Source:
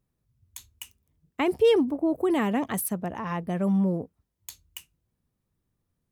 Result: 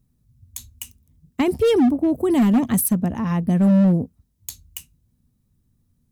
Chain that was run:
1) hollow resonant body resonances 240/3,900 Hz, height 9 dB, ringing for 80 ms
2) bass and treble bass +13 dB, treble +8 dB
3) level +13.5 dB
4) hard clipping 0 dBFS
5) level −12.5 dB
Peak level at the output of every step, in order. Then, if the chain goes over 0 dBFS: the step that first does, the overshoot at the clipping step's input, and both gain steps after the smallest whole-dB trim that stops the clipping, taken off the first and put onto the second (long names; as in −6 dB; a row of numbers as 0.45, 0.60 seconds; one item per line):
−12.0, −5.5, +8.0, 0.0, −12.5 dBFS
step 3, 8.0 dB
step 3 +5.5 dB, step 5 −4.5 dB